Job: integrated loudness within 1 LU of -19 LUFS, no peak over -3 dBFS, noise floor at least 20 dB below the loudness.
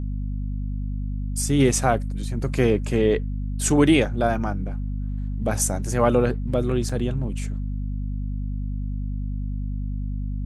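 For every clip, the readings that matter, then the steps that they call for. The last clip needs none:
dropouts 1; longest dropout 4.3 ms; hum 50 Hz; highest harmonic 250 Hz; hum level -25 dBFS; loudness -24.5 LUFS; peak level -5.0 dBFS; loudness target -19.0 LUFS
-> interpolate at 6.89 s, 4.3 ms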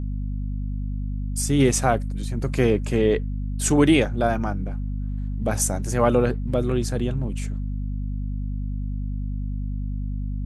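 dropouts 0; hum 50 Hz; highest harmonic 250 Hz; hum level -25 dBFS
-> hum notches 50/100/150/200/250 Hz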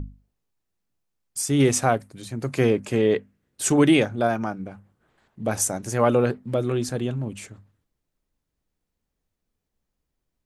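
hum not found; loudness -23.0 LUFS; peak level -6.0 dBFS; loudness target -19.0 LUFS
-> trim +4 dB; peak limiter -3 dBFS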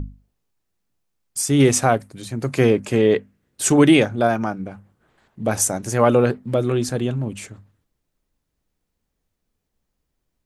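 loudness -19.0 LUFS; peak level -3.0 dBFS; noise floor -77 dBFS

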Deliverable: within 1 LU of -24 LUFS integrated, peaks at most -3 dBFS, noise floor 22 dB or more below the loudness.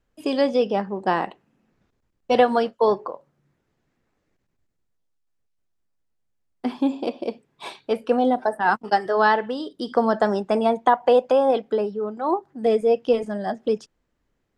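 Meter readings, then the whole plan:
loudness -22.0 LUFS; peak level -5.0 dBFS; loudness target -24.0 LUFS
-> trim -2 dB

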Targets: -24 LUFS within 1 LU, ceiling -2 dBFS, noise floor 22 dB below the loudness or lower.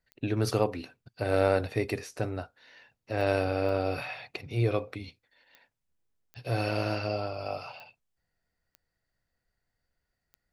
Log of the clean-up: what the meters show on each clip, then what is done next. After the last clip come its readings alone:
clicks found 8; loudness -30.5 LUFS; peak level -11.0 dBFS; loudness target -24.0 LUFS
-> de-click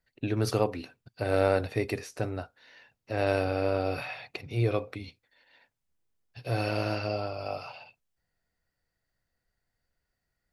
clicks found 0; loudness -30.5 LUFS; peak level -11.0 dBFS; loudness target -24.0 LUFS
-> trim +6.5 dB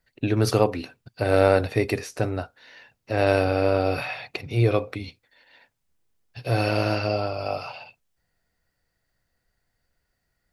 loudness -24.0 LUFS; peak level -4.5 dBFS; noise floor -77 dBFS

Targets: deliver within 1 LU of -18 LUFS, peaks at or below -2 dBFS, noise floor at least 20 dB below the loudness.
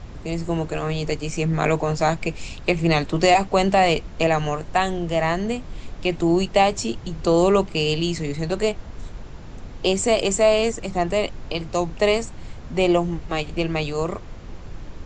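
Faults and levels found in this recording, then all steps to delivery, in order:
noise floor -38 dBFS; noise floor target -42 dBFS; loudness -22.0 LUFS; peak level -4.0 dBFS; loudness target -18.0 LUFS
-> noise print and reduce 6 dB; trim +4 dB; peak limiter -2 dBFS

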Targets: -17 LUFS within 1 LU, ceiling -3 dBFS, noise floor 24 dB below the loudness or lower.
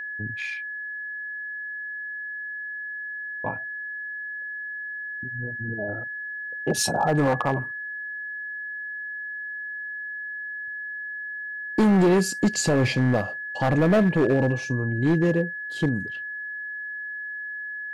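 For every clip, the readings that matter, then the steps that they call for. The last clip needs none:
clipped samples 1.6%; clipping level -15.0 dBFS; steady tone 1.7 kHz; tone level -31 dBFS; loudness -26.5 LUFS; peak level -15.0 dBFS; loudness target -17.0 LUFS
-> clip repair -15 dBFS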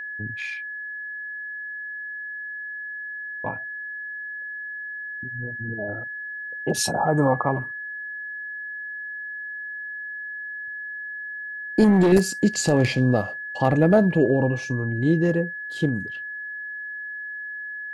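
clipped samples 0.0%; steady tone 1.7 kHz; tone level -31 dBFS
-> band-stop 1.7 kHz, Q 30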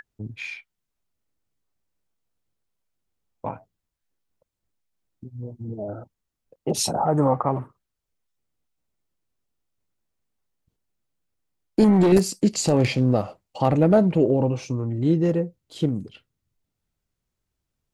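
steady tone not found; loudness -21.5 LUFS; peak level -6.0 dBFS; loudness target -17.0 LUFS
-> trim +4.5 dB; peak limiter -3 dBFS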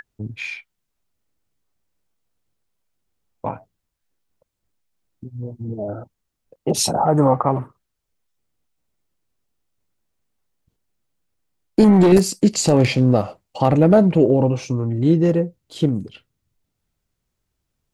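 loudness -17.5 LUFS; peak level -3.0 dBFS; noise floor -78 dBFS

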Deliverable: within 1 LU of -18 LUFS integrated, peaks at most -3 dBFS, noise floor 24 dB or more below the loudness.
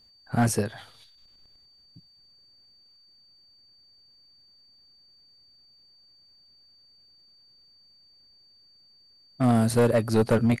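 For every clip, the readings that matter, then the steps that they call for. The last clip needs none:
clipped samples 0.6%; clipping level -15.0 dBFS; steady tone 4.6 kHz; tone level -56 dBFS; loudness -24.0 LUFS; peak level -15.0 dBFS; loudness target -18.0 LUFS
-> clip repair -15 dBFS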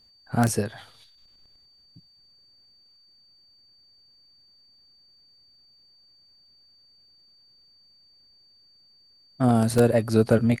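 clipped samples 0.0%; steady tone 4.6 kHz; tone level -56 dBFS
-> band-stop 4.6 kHz, Q 30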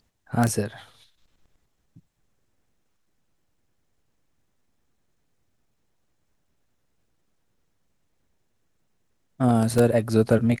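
steady tone not found; loudness -22.5 LUFS; peak level -6.0 dBFS; loudness target -18.0 LUFS
-> trim +4.5 dB; peak limiter -3 dBFS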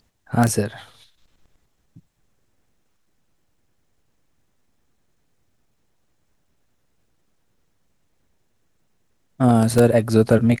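loudness -18.5 LUFS; peak level -3.0 dBFS; noise floor -67 dBFS

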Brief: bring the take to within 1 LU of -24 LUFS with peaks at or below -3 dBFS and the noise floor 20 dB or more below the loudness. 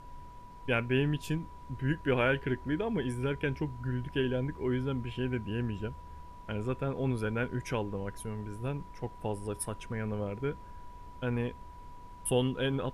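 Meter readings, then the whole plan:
steady tone 980 Hz; tone level -50 dBFS; noise floor -49 dBFS; noise floor target -54 dBFS; loudness -33.5 LUFS; peak level -15.5 dBFS; loudness target -24.0 LUFS
-> band-stop 980 Hz, Q 30; noise print and reduce 6 dB; trim +9.5 dB

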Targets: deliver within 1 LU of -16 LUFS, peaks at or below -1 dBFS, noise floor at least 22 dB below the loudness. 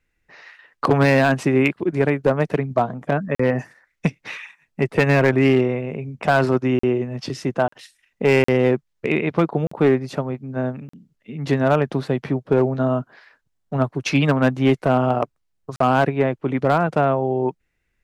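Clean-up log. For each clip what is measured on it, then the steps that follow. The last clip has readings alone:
clipped samples 1.1%; clipping level -8.5 dBFS; dropouts 7; longest dropout 44 ms; loudness -20.5 LUFS; peak level -8.5 dBFS; loudness target -16.0 LUFS
-> clip repair -8.5 dBFS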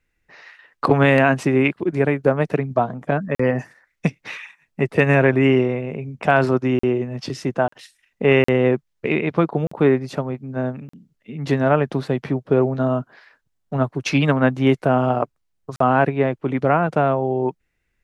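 clipped samples 0.0%; dropouts 7; longest dropout 44 ms
-> interpolate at 3.35/6.79/7.68/8.44/9.67/10.89/15.76 s, 44 ms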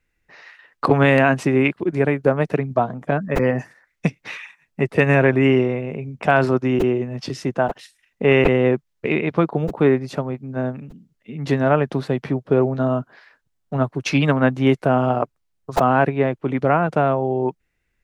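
dropouts 0; loudness -20.0 LUFS; peak level -1.5 dBFS; loudness target -16.0 LUFS
-> trim +4 dB; peak limiter -1 dBFS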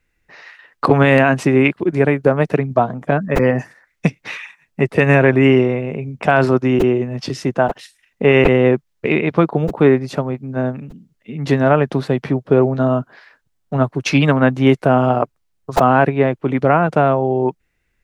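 loudness -16.0 LUFS; peak level -1.0 dBFS; noise floor -68 dBFS

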